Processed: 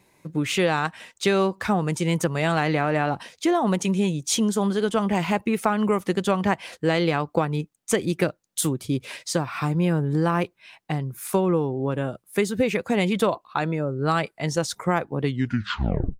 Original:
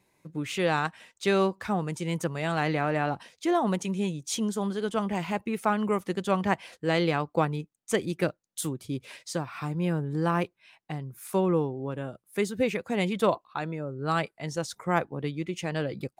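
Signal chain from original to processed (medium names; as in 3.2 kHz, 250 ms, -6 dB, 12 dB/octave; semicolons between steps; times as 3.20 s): tape stop on the ending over 0.96 s; compression, threshold -26 dBFS, peak gain reduction 8.5 dB; trim +8.5 dB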